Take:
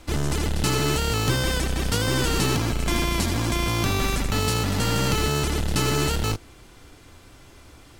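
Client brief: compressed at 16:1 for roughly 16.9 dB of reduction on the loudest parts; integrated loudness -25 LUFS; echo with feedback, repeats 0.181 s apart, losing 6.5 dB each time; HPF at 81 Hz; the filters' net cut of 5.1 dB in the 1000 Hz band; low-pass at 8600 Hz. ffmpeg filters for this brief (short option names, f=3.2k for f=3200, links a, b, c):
-af "highpass=81,lowpass=8.6k,equalizer=f=1k:t=o:g=-7,acompressor=threshold=-37dB:ratio=16,aecho=1:1:181|362|543|724|905|1086:0.473|0.222|0.105|0.0491|0.0231|0.0109,volume=15dB"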